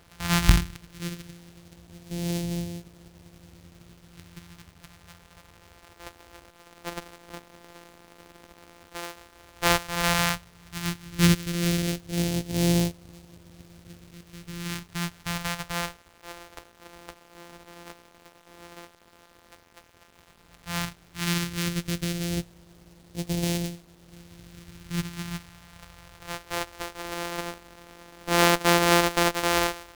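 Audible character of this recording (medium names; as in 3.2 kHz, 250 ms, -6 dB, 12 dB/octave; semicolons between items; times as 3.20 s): a buzz of ramps at a fixed pitch in blocks of 256 samples; phasing stages 2, 0.097 Hz, lowest notch 100–1200 Hz; a quantiser's noise floor 10-bit, dither none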